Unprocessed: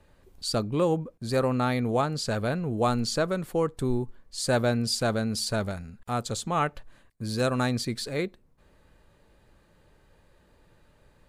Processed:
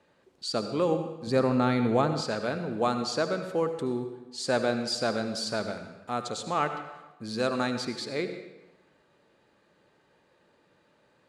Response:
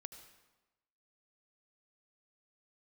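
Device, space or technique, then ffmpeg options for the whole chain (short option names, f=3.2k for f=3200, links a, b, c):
supermarket ceiling speaker: -filter_complex "[0:a]highpass=210,lowpass=6.6k[a];[1:a]atrim=start_sample=2205[b];[a][b]afir=irnorm=-1:irlink=0,asettb=1/sr,asplit=3[c][d][e];[c]atrim=end=1.274[f];[d]atrim=start=1.27:end=2.21,asetpts=PTS-STARTPTS,afade=t=in:d=0.004:c=qsin,afade=t=out:st=0.936:d=0.004:c=qsin,lowshelf=f=250:g=11.5[g];[e]atrim=start=2.206[h];[f][g]acrossfade=d=0.004:c1=hsin:c2=qsin[i];[i][h]acrossfade=d=0.004:c1=qsin:c2=hsin,volume=4.5dB"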